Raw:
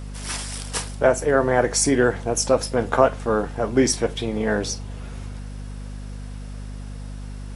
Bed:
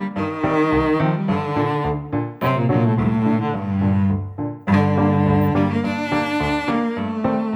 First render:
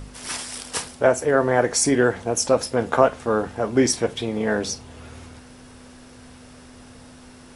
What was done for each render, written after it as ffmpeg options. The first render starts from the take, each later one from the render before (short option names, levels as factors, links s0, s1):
-af "bandreject=f=50:t=h:w=4,bandreject=f=100:t=h:w=4,bandreject=f=150:t=h:w=4,bandreject=f=200:t=h:w=4"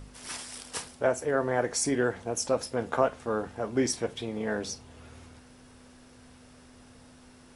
-af "volume=0.376"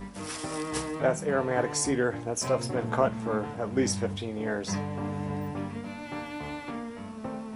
-filter_complex "[1:a]volume=0.15[s0];[0:a][s0]amix=inputs=2:normalize=0"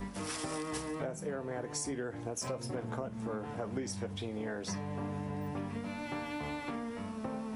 -filter_complex "[0:a]acrossover=split=510|4900[s0][s1][s2];[s1]alimiter=limit=0.0631:level=0:latency=1:release=452[s3];[s0][s3][s2]amix=inputs=3:normalize=0,acompressor=threshold=0.02:ratio=10"